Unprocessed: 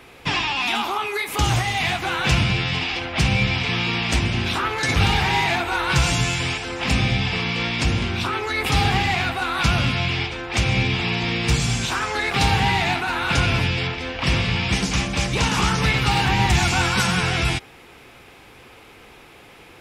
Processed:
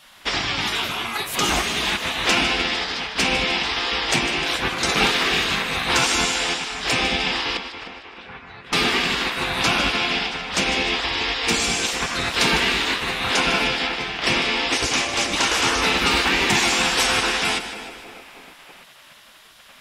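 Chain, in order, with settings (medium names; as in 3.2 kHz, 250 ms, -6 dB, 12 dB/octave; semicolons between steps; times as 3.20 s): 7.57–8.73 s: ladder band-pass 1.2 kHz, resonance 20%; on a send: two-band feedback delay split 790 Hz, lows 310 ms, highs 152 ms, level -11 dB; on the sum: spectral gate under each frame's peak -10 dB weak; trim +4 dB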